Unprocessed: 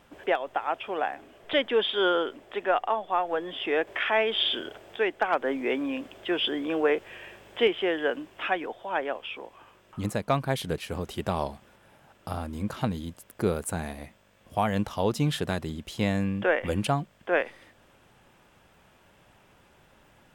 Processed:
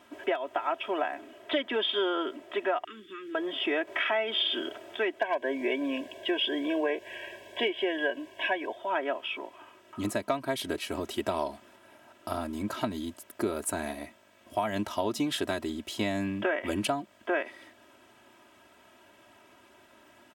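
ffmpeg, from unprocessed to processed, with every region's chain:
-filter_complex "[0:a]asettb=1/sr,asplit=3[a][b][c];[a]atrim=end=2.844[d];[b]atrim=start=2.84:end=3.35,asetpts=PTS-STARTPTS,afade=t=in:d=0.004:c=qsin,afade=t=out:st=0.506:d=0.004:c=qsin,asuperstop=centerf=740:order=8:qfactor=0.7,acompressor=threshold=-41dB:ratio=4:attack=3.2:release=140:knee=1:detection=peak[e];[c]atrim=start=3.346[f];[d][e]acrossfade=d=0.004:c1=hsin:c2=qsin[g];[g][f]acrossfade=d=0.004:c1=qsin:c2=hsin,asettb=1/sr,asplit=3[h][i][j];[h]atrim=end=5.194[k];[i]atrim=start=5.19:end=8.77,asetpts=PTS-STARTPTS,afade=t=in:d=0.004:c=qsin,afade=t=out:st=3.576:d=0.004:c=qsin,asuperstop=centerf=1300:order=8:qfactor=3.5,aecho=1:1:1.8:0.38,atrim=end_sample=157878[l];[j]atrim=start=8.766[m];[k][l]acrossfade=d=0.004:c1=hsin:c2=qsin[n];[n][m]acrossfade=d=0.004:c1=qsin:c2=hsin,highpass=150,aecho=1:1:3.1:0.85,acompressor=threshold=-25dB:ratio=6"

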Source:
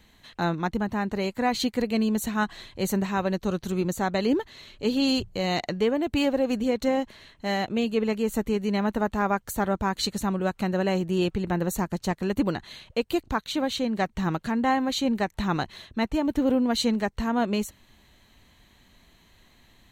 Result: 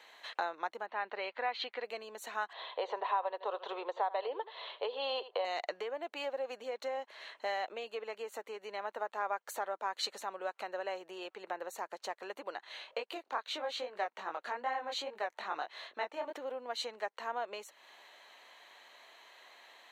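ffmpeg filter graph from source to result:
-filter_complex "[0:a]asettb=1/sr,asplit=3[a][b][c];[a]atrim=end=0.864[d];[b]atrim=start=0.86:end=1.84,asetpts=PTS-STARTPTS,afade=t=in:d=0.004:c=qsin,afade=t=out:st=0.976:d=0.004:c=qsin,lowpass=f=3.7k:w=0.5412,lowpass=f=3.7k:w=1.3066,tiltshelf=f=1.2k:g=-3.5[e];[c]atrim=start=1.836[f];[d][e]acrossfade=d=0.004:c1=hsin:c2=qsin[g];[g][f]acrossfade=d=0.004:c1=qsin:c2=hsin,asettb=1/sr,asplit=3[h][i][j];[h]atrim=end=2.534[k];[i]atrim=start=2.53:end=5.45,asetpts=PTS-STARTPTS,afade=t=in:d=0.004:c=qsin,afade=t=out:st=2.916:d=0.004:c=qsin,highpass=440,equalizer=f=470:t=q:w=4:g=9,equalizer=f=710:t=q:w=4:g=6,equalizer=f=1k:t=q:w=4:g=10,equalizer=f=1.5k:t=q:w=4:g=-4,equalizer=f=2.3k:t=q:w=4:g=-5,equalizer=f=3.5k:t=q:w=4:g=7,lowpass=f=3.6k:w=0.5412,lowpass=f=3.6k:w=1.3066,aecho=1:1:80:0.126,atrim=end_sample=128772[l];[j]atrim=start=5.446[m];[k][l]acrossfade=d=0.004:c1=hsin:c2=qsin[n];[n][m]acrossfade=d=0.004:c1=qsin:c2=hsin,asettb=1/sr,asplit=3[o][p][q];[o]atrim=end=12.644[r];[p]atrim=start=12.64:end=16.33,asetpts=PTS-STARTPTS,afade=t=in:d=0.004:c=qsin,afade=t=out:st=3.686:d=0.004:c=qsin,highshelf=f=5.6k:g=-4.5,flanger=delay=19.5:depth=5:speed=2.4[s];[q]atrim=start=16.326[t];[r][s]acrossfade=d=0.004:c1=hsin:c2=qsin[u];[u][t]acrossfade=d=0.004:c1=qsin:c2=hsin,lowpass=f=2.4k:p=1,acompressor=threshold=-36dB:ratio=10,highpass=f=530:w=0.5412,highpass=f=530:w=1.3066,volume=7dB"

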